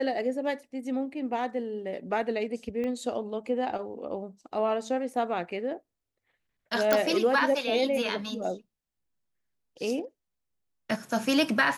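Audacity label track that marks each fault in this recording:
2.840000	2.840000	click −23 dBFS
6.930000	6.930000	click −8 dBFS

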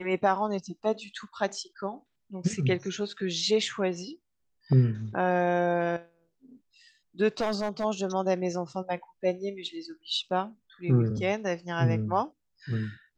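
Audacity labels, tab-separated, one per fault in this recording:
7.400000	7.850000	clipping −23.5 dBFS

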